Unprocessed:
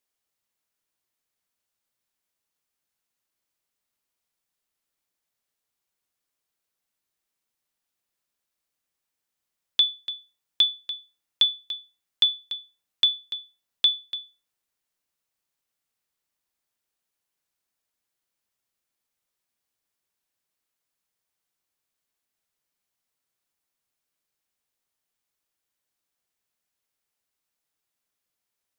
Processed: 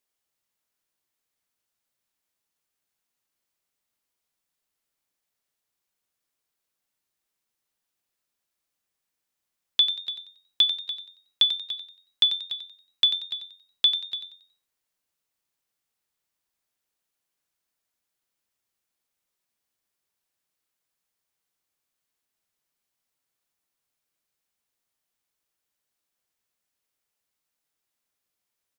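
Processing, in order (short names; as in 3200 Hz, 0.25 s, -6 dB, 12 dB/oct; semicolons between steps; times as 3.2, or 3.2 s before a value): frequency-shifting echo 92 ms, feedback 32%, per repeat +91 Hz, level -10 dB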